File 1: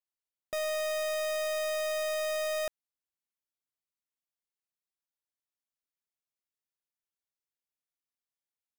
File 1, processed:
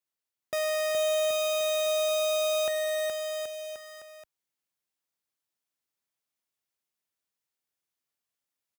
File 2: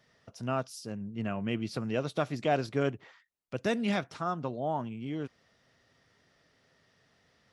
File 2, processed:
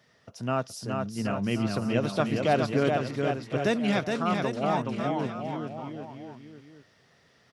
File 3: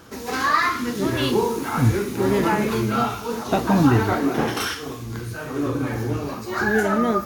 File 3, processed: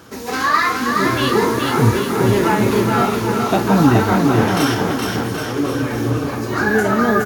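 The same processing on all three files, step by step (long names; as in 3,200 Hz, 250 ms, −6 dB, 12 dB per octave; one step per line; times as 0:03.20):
high-pass filter 66 Hz 12 dB per octave
on a send: bouncing-ball delay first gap 420 ms, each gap 0.85×, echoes 5
on the sum: level +3.5 dB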